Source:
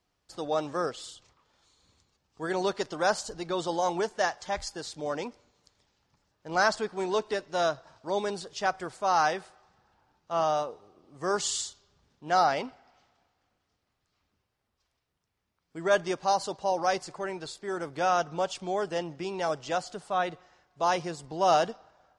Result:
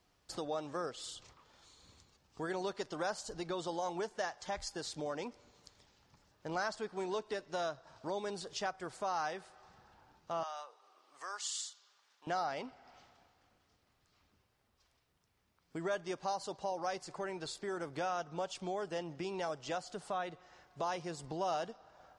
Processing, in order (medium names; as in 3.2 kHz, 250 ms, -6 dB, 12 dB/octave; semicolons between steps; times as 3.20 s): compression 2.5:1, threshold -46 dBFS, peak gain reduction 18 dB; 10.43–12.27 s: Chebyshev high-pass 1.2 kHz, order 2; trim +4 dB